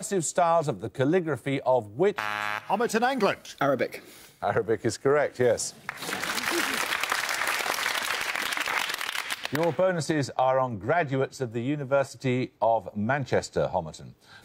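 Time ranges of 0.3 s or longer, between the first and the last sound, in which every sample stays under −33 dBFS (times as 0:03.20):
0:03.98–0:04.43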